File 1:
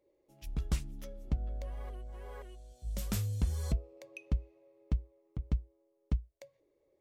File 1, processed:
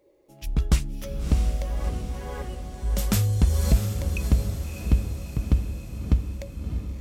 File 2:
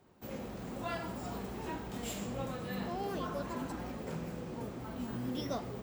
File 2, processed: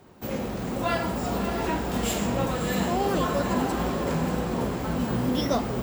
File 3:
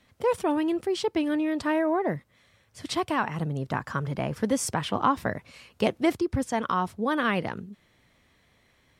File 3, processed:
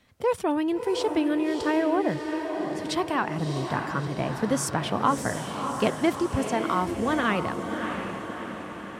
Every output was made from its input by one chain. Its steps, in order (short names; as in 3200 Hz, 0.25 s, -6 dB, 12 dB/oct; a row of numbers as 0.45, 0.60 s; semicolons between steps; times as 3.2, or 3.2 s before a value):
diffused feedback echo 0.647 s, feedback 58%, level -6 dB; match loudness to -27 LUFS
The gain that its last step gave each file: +11.5, +12.0, 0.0 dB